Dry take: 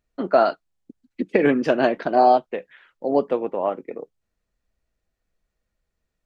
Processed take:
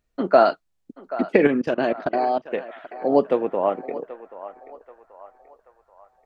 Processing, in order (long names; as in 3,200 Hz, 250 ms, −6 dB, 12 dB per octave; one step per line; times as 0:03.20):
0:01.47–0:02.45: output level in coarse steps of 23 dB
feedback echo with a band-pass in the loop 782 ms, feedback 50%, band-pass 1,100 Hz, level −13 dB
level +2 dB